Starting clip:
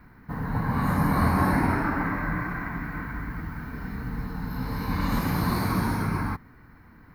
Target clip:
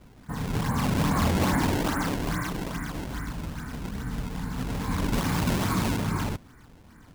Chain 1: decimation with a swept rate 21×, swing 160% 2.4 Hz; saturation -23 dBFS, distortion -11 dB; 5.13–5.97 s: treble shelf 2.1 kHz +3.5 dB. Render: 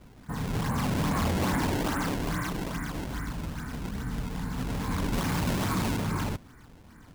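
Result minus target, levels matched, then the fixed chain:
saturation: distortion +9 dB
decimation with a swept rate 21×, swing 160% 2.4 Hz; saturation -15.5 dBFS, distortion -20 dB; 5.13–5.97 s: treble shelf 2.1 kHz +3.5 dB

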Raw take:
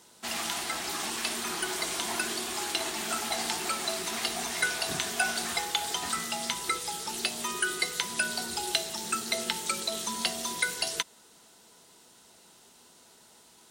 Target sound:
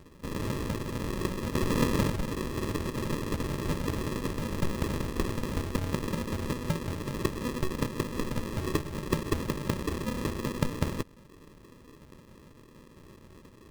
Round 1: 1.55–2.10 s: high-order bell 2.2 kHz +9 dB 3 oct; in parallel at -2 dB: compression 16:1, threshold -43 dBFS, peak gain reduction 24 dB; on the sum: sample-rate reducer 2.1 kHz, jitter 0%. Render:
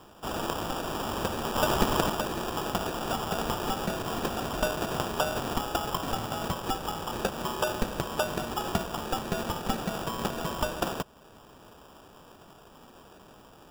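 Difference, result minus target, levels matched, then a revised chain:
sample-rate reducer: distortion -22 dB
1.55–2.10 s: high-order bell 2.2 kHz +9 dB 3 oct; in parallel at -2 dB: compression 16:1, threshold -43 dBFS, peak gain reduction 24 dB; on the sum: sample-rate reducer 740 Hz, jitter 0%

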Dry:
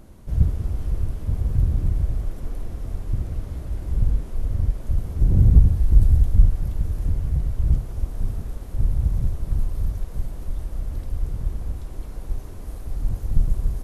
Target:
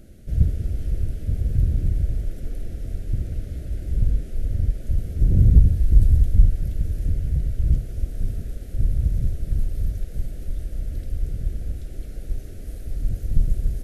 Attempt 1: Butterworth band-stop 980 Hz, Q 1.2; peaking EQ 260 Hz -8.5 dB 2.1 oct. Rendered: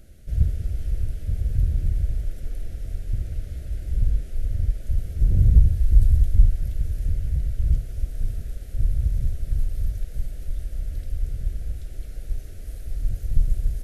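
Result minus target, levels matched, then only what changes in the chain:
250 Hz band -5.0 dB
remove: peaking EQ 260 Hz -8.5 dB 2.1 oct

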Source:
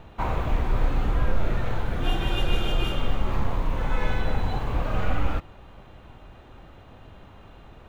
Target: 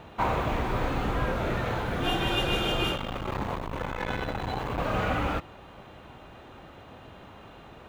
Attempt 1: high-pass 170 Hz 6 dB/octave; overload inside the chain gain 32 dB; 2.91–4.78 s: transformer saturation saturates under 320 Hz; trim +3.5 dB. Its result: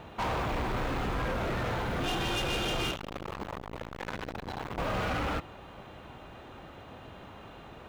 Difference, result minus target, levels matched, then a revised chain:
overload inside the chain: distortion +30 dB
high-pass 170 Hz 6 dB/octave; overload inside the chain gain 20 dB; 2.91–4.78 s: transformer saturation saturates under 320 Hz; trim +3.5 dB

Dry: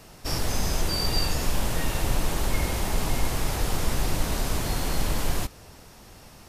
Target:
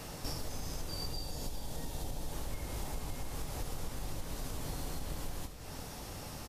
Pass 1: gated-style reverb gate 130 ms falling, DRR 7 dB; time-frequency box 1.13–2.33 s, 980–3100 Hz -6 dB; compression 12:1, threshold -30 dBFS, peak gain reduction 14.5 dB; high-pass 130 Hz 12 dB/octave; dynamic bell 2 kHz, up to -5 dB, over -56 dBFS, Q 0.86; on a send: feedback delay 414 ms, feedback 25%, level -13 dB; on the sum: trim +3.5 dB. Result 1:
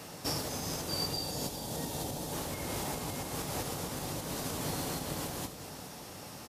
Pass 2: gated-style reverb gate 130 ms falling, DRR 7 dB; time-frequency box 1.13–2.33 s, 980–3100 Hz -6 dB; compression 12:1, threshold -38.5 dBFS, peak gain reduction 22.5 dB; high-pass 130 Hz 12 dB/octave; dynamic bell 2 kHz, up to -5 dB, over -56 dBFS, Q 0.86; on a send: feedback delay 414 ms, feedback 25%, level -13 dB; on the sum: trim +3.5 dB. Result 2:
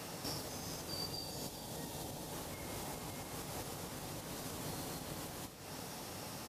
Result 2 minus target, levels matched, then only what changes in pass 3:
125 Hz band -3.5 dB
remove: high-pass 130 Hz 12 dB/octave

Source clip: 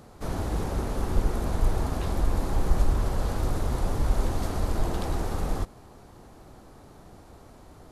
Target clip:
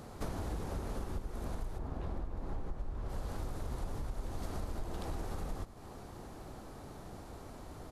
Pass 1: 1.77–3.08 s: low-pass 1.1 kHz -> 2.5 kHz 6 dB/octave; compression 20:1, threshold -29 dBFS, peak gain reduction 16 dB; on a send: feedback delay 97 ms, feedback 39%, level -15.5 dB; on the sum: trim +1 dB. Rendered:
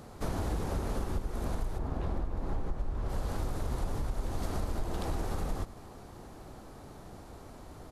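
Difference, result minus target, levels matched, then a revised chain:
compression: peak gain reduction -5.5 dB
1.77–3.08 s: low-pass 1.1 kHz -> 2.5 kHz 6 dB/octave; compression 20:1, threshold -35 dBFS, peak gain reduction 21.5 dB; on a send: feedback delay 97 ms, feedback 39%, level -15.5 dB; on the sum: trim +1 dB

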